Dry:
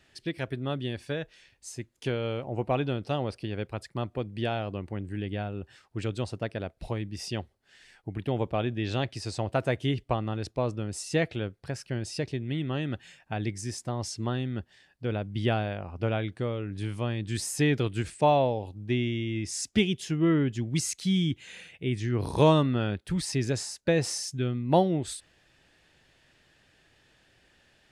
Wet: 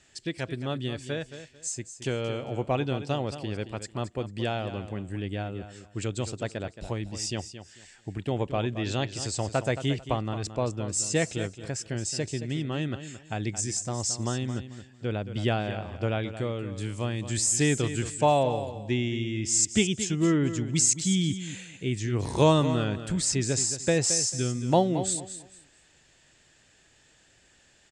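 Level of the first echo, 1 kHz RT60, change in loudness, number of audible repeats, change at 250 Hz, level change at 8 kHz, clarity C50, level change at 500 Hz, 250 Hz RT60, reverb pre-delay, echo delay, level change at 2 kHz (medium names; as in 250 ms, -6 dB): -11.5 dB, no reverb, +1.5 dB, 2, +0.5 dB, +11.0 dB, no reverb, +0.5 dB, no reverb, no reverb, 222 ms, +1.0 dB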